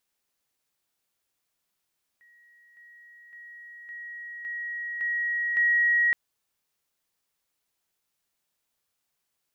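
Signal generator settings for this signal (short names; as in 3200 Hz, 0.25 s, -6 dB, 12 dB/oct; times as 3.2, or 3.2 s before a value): level ladder 1900 Hz -55 dBFS, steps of 6 dB, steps 7, 0.56 s 0.00 s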